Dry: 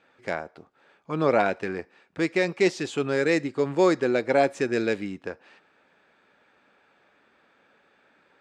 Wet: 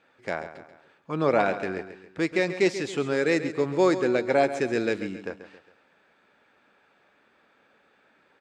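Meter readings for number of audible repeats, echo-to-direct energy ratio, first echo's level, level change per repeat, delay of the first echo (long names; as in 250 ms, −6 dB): 3, −11.0 dB, −12.0 dB, −6.5 dB, 136 ms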